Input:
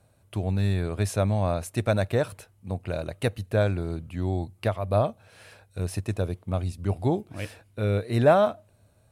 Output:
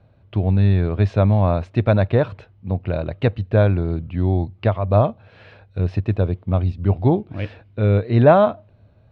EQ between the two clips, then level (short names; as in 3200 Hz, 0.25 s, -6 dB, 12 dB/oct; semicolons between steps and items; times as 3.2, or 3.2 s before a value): LPF 3800 Hz 24 dB/oct; low shelf 470 Hz +6.5 dB; dynamic EQ 1000 Hz, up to +4 dB, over -39 dBFS, Q 2.8; +3.0 dB